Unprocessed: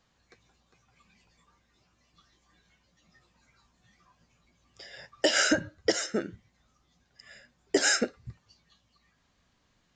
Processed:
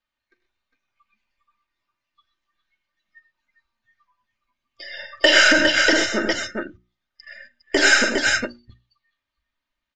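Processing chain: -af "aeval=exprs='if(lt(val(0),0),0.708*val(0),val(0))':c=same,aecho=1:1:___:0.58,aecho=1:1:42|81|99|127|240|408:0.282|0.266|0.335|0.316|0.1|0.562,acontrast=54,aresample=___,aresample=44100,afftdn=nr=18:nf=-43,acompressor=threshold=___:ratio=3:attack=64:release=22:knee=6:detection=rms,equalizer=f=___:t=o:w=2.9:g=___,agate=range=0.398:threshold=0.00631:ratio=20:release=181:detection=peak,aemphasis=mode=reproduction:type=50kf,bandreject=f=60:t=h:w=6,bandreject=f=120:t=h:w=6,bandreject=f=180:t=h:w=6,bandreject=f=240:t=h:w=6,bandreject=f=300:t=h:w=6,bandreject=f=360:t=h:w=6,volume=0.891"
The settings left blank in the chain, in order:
3.3, 32000, 0.1, 2.7k, 12.5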